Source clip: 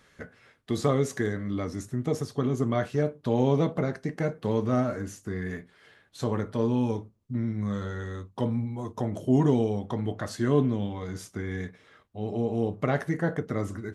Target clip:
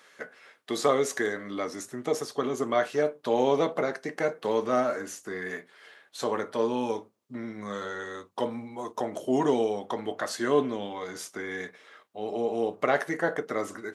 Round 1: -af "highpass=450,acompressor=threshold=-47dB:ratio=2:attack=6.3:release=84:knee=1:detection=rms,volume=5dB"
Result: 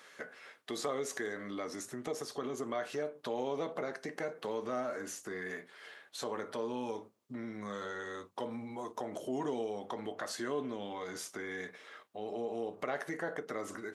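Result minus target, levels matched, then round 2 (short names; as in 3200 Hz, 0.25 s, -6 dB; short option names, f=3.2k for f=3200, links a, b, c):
compressor: peak gain reduction +13.5 dB
-af "highpass=450,volume=5dB"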